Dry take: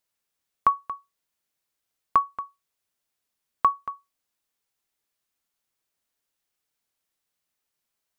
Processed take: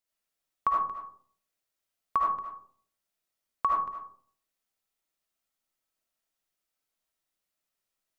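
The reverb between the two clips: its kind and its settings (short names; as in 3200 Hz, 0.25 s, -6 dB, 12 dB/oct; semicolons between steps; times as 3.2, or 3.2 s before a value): digital reverb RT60 0.54 s, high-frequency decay 0.35×, pre-delay 35 ms, DRR -3 dB; gain -7.5 dB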